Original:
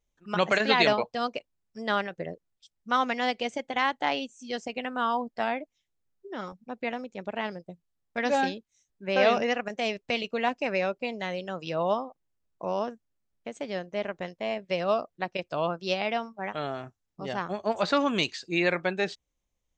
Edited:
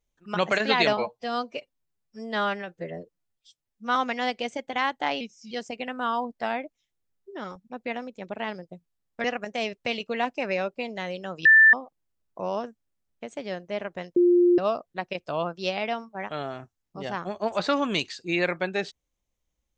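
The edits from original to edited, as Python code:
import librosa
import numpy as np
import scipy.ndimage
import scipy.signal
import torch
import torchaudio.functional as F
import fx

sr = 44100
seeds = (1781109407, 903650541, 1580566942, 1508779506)

y = fx.edit(x, sr, fx.stretch_span(start_s=0.97, length_s=1.99, factor=1.5),
    fx.speed_span(start_s=4.21, length_s=0.27, speed=0.88),
    fx.cut(start_s=8.21, length_s=1.27),
    fx.bleep(start_s=11.69, length_s=0.28, hz=1770.0, db=-11.0),
    fx.bleep(start_s=14.4, length_s=0.42, hz=352.0, db=-15.0), tone=tone)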